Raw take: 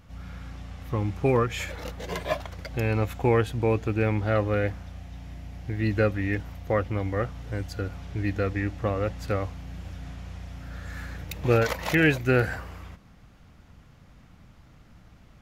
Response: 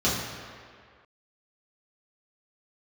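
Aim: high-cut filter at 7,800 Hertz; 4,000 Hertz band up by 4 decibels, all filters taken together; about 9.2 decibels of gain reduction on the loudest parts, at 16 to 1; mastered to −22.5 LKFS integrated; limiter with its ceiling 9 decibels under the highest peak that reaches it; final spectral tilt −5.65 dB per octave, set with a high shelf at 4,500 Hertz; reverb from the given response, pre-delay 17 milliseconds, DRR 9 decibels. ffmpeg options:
-filter_complex "[0:a]lowpass=7800,equalizer=frequency=4000:width_type=o:gain=8.5,highshelf=frequency=4500:gain=-6,acompressor=threshold=-25dB:ratio=16,alimiter=limit=-24dB:level=0:latency=1,asplit=2[link_01][link_02];[1:a]atrim=start_sample=2205,adelay=17[link_03];[link_02][link_03]afir=irnorm=-1:irlink=0,volume=-23.5dB[link_04];[link_01][link_04]amix=inputs=2:normalize=0,volume=11.5dB"

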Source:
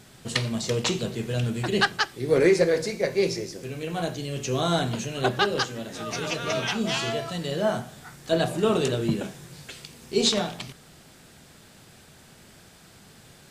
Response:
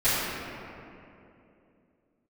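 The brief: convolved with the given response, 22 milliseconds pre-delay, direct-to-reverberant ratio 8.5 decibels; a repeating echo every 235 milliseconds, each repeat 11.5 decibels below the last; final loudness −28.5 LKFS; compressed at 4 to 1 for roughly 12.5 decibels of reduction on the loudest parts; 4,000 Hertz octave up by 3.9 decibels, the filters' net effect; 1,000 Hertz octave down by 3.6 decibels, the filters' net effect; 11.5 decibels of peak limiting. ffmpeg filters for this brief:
-filter_complex "[0:a]equalizer=frequency=1000:width_type=o:gain=-5.5,equalizer=frequency=4000:width_type=o:gain=5,acompressor=threshold=-31dB:ratio=4,alimiter=level_in=1.5dB:limit=-24dB:level=0:latency=1,volume=-1.5dB,aecho=1:1:235|470|705:0.266|0.0718|0.0194,asplit=2[link_01][link_02];[1:a]atrim=start_sample=2205,adelay=22[link_03];[link_02][link_03]afir=irnorm=-1:irlink=0,volume=-25dB[link_04];[link_01][link_04]amix=inputs=2:normalize=0,volume=6.5dB"

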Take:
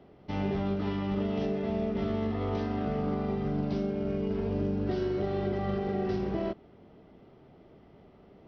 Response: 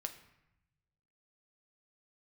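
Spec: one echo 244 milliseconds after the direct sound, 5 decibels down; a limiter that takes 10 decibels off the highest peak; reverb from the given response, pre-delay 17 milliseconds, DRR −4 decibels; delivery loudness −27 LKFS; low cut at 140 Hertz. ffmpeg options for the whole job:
-filter_complex "[0:a]highpass=140,alimiter=level_in=5dB:limit=-24dB:level=0:latency=1,volume=-5dB,aecho=1:1:244:0.562,asplit=2[link_01][link_02];[1:a]atrim=start_sample=2205,adelay=17[link_03];[link_02][link_03]afir=irnorm=-1:irlink=0,volume=6dB[link_04];[link_01][link_04]amix=inputs=2:normalize=0,volume=5dB"

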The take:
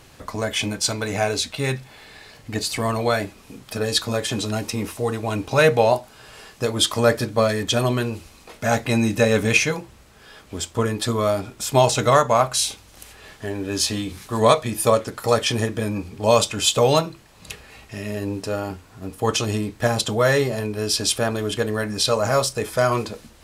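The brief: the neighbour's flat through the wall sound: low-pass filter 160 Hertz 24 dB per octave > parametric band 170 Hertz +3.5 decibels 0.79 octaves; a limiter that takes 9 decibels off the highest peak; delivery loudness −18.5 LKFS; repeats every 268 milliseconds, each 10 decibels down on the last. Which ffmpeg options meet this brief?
ffmpeg -i in.wav -af "alimiter=limit=-10.5dB:level=0:latency=1,lowpass=frequency=160:width=0.5412,lowpass=frequency=160:width=1.3066,equalizer=frequency=170:width_type=o:width=0.79:gain=3.5,aecho=1:1:268|536|804|1072:0.316|0.101|0.0324|0.0104,volume=13.5dB" out.wav

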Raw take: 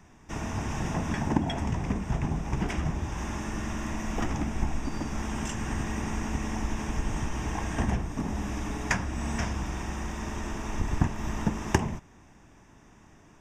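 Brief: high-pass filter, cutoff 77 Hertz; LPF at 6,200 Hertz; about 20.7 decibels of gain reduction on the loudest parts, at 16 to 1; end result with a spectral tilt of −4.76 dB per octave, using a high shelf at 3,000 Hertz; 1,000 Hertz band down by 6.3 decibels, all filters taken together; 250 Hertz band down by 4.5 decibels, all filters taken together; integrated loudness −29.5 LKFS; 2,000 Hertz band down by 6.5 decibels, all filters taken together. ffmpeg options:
ffmpeg -i in.wav -af "highpass=77,lowpass=6200,equalizer=frequency=250:width_type=o:gain=-5.5,equalizer=frequency=1000:width_type=o:gain=-6.5,equalizer=frequency=2000:width_type=o:gain=-8,highshelf=frequency=3000:gain=5.5,acompressor=threshold=-43dB:ratio=16,volume=18.5dB" out.wav

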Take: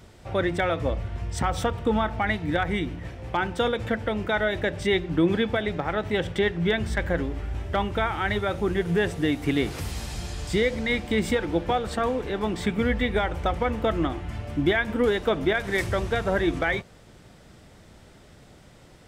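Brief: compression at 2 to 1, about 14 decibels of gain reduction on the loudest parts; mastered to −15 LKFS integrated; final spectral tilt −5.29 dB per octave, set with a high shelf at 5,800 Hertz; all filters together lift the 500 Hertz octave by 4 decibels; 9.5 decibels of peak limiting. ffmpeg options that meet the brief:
ffmpeg -i in.wav -af "equalizer=frequency=500:width_type=o:gain=5,highshelf=frequency=5800:gain=-4,acompressor=threshold=-42dB:ratio=2,volume=24.5dB,alimiter=limit=-5.5dB:level=0:latency=1" out.wav

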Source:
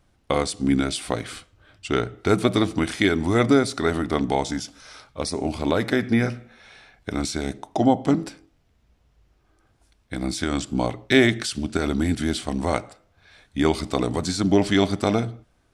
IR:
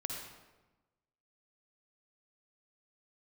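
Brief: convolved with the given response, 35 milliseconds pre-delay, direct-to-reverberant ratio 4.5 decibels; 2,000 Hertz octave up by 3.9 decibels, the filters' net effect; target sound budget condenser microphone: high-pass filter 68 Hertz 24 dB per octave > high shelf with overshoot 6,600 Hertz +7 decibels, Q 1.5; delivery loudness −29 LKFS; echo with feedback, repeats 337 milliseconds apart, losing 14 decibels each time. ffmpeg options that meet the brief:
-filter_complex "[0:a]equalizer=frequency=2000:width_type=o:gain=5,aecho=1:1:337|674:0.2|0.0399,asplit=2[link_01][link_02];[1:a]atrim=start_sample=2205,adelay=35[link_03];[link_02][link_03]afir=irnorm=-1:irlink=0,volume=-5.5dB[link_04];[link_01][link_04]amix=inputs=2:normalize=0,highpass=frequency=68:width=0.5412,highpass=frequency=68:width=1.3066,highshelf=frequency=6600:width_type=q:width=1.5:gain=7,volume=-8dB"

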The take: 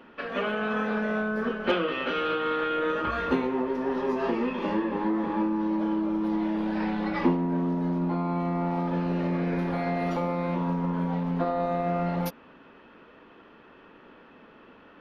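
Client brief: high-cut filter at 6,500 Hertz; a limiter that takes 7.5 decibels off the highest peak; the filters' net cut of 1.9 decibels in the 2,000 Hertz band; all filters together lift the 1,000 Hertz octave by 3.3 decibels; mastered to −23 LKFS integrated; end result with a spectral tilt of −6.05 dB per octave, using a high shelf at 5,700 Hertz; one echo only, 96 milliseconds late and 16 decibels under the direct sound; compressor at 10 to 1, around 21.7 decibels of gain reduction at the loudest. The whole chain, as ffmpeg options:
ffmpeg -i in.wav -af "lowpass=6500,equalizer=frequency=1000:width_type=o:gain=6,equalizer=frequency=2000:width_type=o:gain=-5.5,highshelf=frequency=5700:gain=-5,acompressor=threshold=-40dB:ratio=10,alimiter=level_in=12.5dB:limit=-24dB:level=0:latency=1,volume=-12.5dB,aecho=1:1:96:0.158,volume=22dB" out.wav

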